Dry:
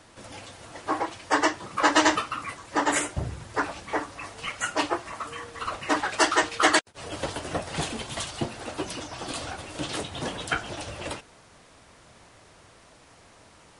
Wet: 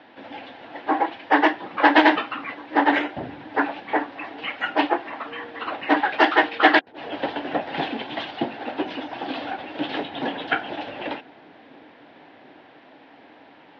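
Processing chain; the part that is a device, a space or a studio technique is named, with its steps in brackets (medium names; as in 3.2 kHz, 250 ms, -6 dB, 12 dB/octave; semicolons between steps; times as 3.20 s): steep low-pass 3.6 kHz 36 dB/octave; full-range speaker at full volume (loudspeaker Doppler distortion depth 0.19 ms; cabinet simulation 250–7800 Hz, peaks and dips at 270 Hz +9 dB, 800 Hz +7 dB, 1.2 kHz -7 dB, 1.7 kHz +4 dB, 5.3 kHz +3 dB); feedback echo behind a low-pass 740 ms, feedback 75%, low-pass 430 Hz, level -21 dB; trim +3.5 dB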